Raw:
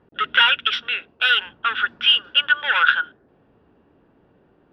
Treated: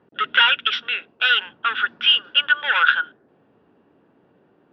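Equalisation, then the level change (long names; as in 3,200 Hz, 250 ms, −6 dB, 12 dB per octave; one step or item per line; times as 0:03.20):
band-pass filter 140–6,400 Hz
0.0 dB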